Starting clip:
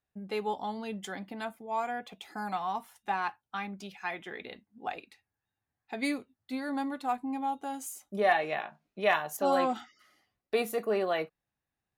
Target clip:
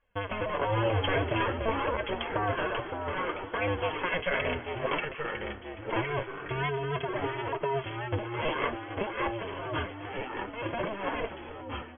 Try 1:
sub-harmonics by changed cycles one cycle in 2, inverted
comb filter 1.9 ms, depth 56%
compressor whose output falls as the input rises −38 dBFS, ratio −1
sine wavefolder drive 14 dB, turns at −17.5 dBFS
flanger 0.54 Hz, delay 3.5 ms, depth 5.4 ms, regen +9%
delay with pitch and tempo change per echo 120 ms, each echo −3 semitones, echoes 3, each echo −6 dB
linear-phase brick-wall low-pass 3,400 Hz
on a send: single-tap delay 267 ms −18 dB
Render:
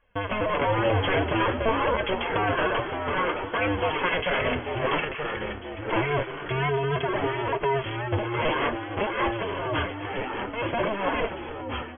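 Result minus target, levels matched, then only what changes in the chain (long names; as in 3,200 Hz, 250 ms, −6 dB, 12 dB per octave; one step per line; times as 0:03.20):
sine wavefolder: distortion +14 dB
change: sine wavefolder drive 6 dB, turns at −17.5 dBFS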